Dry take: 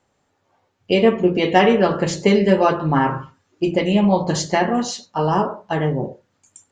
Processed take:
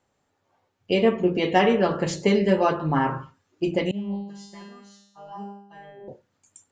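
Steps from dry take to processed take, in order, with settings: 3.91–6.08 s: feedback comb 200 Hz, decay 0.77 s, harmonics all, mix 100%; trim -5 dB

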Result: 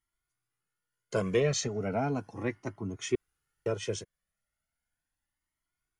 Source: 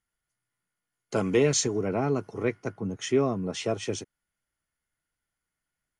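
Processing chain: 1.40–1.81 s: distance through air 71 m; 3.15–3.66 s: room tone; Shepard-style flanger rising 0.36 Hz; trim +1.5 dB

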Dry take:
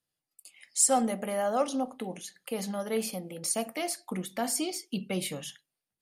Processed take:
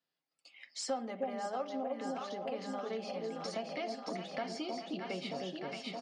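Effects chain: elliptic band-pass 170–5100 Hz, stop band 50 dB; tone controls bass -5 dB, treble -4 dB; echo whose repeats swap between lows and highs 311 ms, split 810 Hz, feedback 76%, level -3 dB; compression 4:1, threshold -38 dBFS, peak gain reduction 14 dB; comb 7.4 ms, depth 33%; trim +1 dB

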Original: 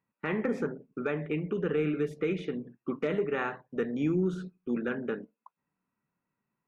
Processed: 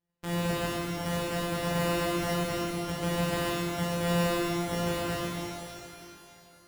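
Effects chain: sorted samples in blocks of 256 samples; pitch-shifted reverb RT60 2.7 s, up +12 st, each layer -8 dB, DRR -7.5 dB; trim -7 dB

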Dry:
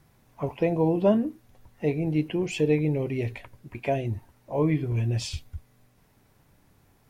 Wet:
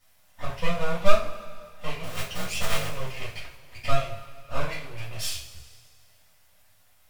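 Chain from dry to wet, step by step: 2.02–2.89 s: cycle switcher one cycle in 3, muted; resonant low shelf 400 Hz -14 dB, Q 3; half-wave rectifier; peaking EQ 520 Hz -13 dB 3 oct; two-slope reverb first 0.33 s, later 2.1 s, from -18 dB, DRR -9.5 dB

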